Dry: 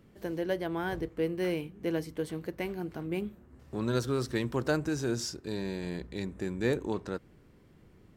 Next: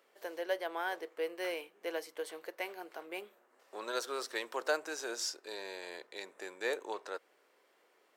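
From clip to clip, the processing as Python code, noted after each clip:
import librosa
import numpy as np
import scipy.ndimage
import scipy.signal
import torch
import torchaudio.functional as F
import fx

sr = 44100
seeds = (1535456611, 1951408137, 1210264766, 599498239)

y = scipy.signal.sosfilt(scipy.signal.butter(4, 510.0, 'highpass', fs=sr, output='sos'), x)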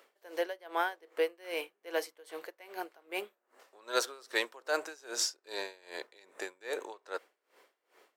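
y = fx.low_shelf(x, sr, hz=140.0, db=-12.0)
y = y * 10.0 ** (-24 * (0.5 - 0.5 * np.cos(2.0 * np.pi * 2.5 * np.arange(len(y)) / sr)) / 20.0)
y = F.gain(torch.from_numpy(y), 8.5).numpy()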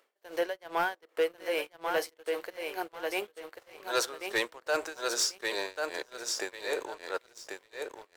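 y = fx.echo_feedback(x, sr, ms=1090, feedback_pct=21, wet_db=-6)
y = fx.leveller(y, sr, passes=2)
y = F.gain(torch.from_numpy(y), -3.5).numpy()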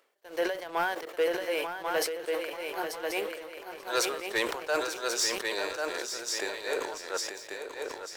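y = fx.echo_feedback(x, sr, ms=888, feedback_pct=25, wet_db=-9.0)
y = fx.sustainer(y, sr, db_per_s=59.0)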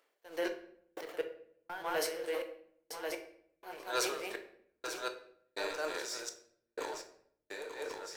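y = fx.step_gate(x, sr, bpm=62, pattern='xx..x..x', floor_db=-60.0, edge_ms=4.5)
y = fx.room_shoebox(y, sr, seeds[0], volume_m3=120.0, walls='mixed', distance_m=0.43)
y = F.gain(torch.from_numpy(y), -5.5).numpy()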